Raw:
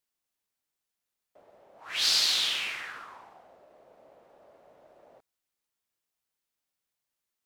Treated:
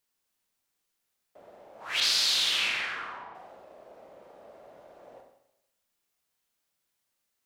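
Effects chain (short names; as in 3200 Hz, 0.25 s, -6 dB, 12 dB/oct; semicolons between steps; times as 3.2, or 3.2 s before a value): 2–3.35 low-pass opened by the level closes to 1900 Hz, open at -24.5 dBFS; compressor, threshold -28 dBFS, peak gain reduction 7.5 dB; Schroeder reverb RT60 0.84 s, combs from 32 ms, DRR 2.5 dB; gain +4 dB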